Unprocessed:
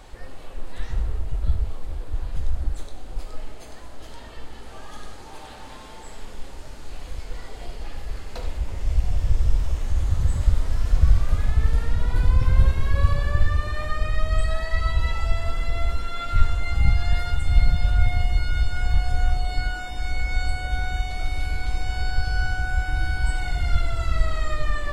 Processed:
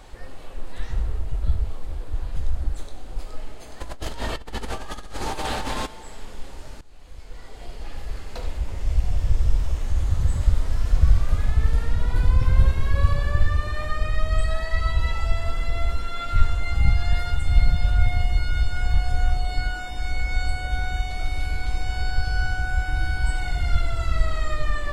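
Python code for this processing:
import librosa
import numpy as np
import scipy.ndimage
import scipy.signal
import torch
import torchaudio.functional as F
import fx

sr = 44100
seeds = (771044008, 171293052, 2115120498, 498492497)

y = fx.over_compress(x, sr, threshold_db=-39.0, ratio=-1.0, at=(3.8, 5.85), fade=0.02)
y = fx.edit(y, sr, fx.fade_in_from(start_s=6.81, length_s=1.19, floor_db=-18.0), tone=tone)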